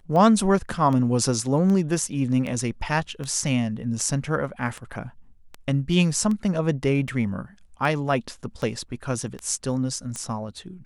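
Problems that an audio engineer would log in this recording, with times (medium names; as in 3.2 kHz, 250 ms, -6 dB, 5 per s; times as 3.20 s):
tick 78 rpm -19 dBFS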